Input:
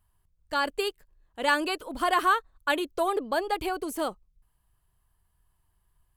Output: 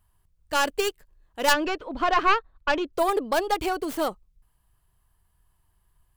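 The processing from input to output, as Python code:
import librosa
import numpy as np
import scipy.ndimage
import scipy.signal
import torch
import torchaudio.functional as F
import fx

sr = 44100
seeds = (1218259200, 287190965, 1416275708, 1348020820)

y = fx.tracing_dist(x, sr, depth_ms=0.28)
y = fx.air_absorb(y, sr, metres=200.0, at=(1.52, 2.92), fade=0.02)
y = y * librosa.db_to_amplitude(3.5)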